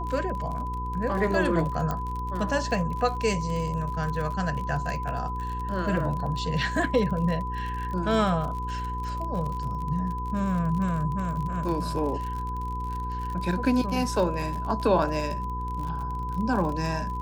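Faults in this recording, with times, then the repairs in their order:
crackle 45/s -32 dBFS
hum 60 Hz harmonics 8 -33 dBFS
tone 1000 Hz -32 dBFS
1.91 pop -16 dBFS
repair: de-click; de-hum 60 Hz, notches 8; notch 1000 Hz, Q 30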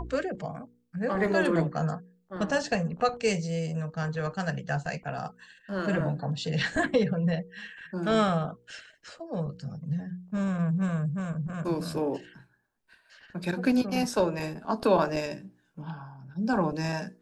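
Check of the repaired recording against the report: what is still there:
none

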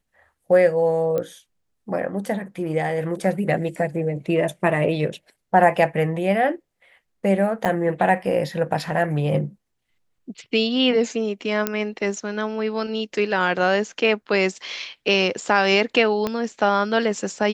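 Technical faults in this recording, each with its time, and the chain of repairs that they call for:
1.18 pop -14 dBFS
7.65–7.66 gap 6.4 ms
11.67 pop -6 dBFS
16.27 pop -10 dBFS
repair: de-click; interpolate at 7.65, 6.4 ms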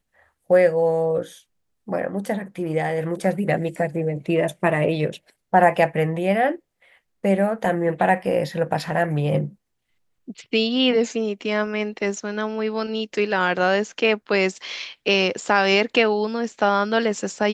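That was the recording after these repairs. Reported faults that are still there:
16.27 pop

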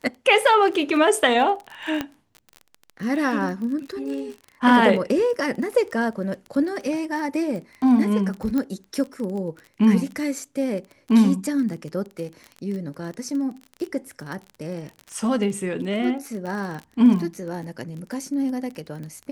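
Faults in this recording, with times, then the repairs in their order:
crackle 23/s -30 dBFS
2.01 pop -11 dBFS
8.58 pop -14 dBFS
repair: de-click

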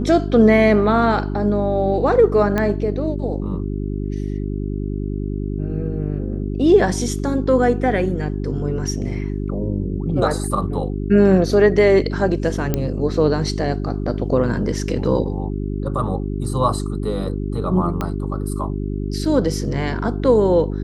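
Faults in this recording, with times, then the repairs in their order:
hum 50 Hz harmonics 8 -24 dBFS
2.58 pop -8 dBFS
12.74 pop -6 dBFS
18.01 pop -10 dBFS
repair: de-click; de-hum 50 Hz, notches 8

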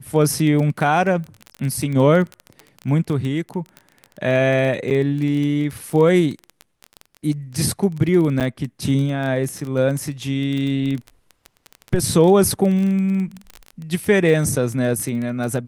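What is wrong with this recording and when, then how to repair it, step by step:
crackle 22/s -24 dBFS
4.9–4.91 gap 8.1 ms
8.4–8.41 gap 7.8 ms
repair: de-click; interpolate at 4.9, 8.1 ms; interpolate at 8.4, 7.8 ms

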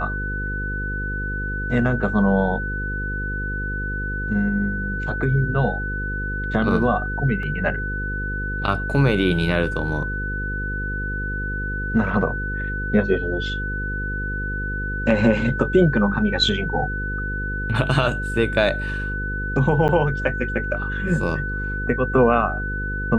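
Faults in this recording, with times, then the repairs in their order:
buzz 50 Hz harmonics 10 -28 dBFS
tone 1500 Hz -27 dBFS
7.43 gap 2.3 ms
19.88–19.89 gap 9.3 ms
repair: de-hum 50 Hz, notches 10; notch 1500 Hz, Q 30; interpolate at 7.43, 2.3 ms; interpolate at 19.88, 9.3 ms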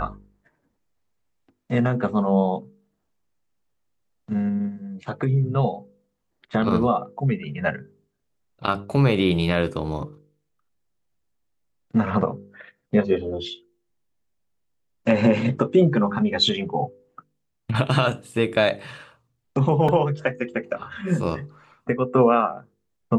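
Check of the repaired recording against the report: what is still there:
none

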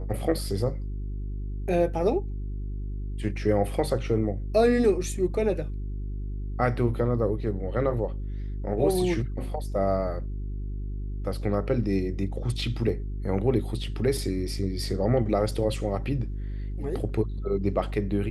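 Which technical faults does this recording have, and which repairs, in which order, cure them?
hum 50 Hz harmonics 8 -32 dBFS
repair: de-hum 50 Hz, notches 8

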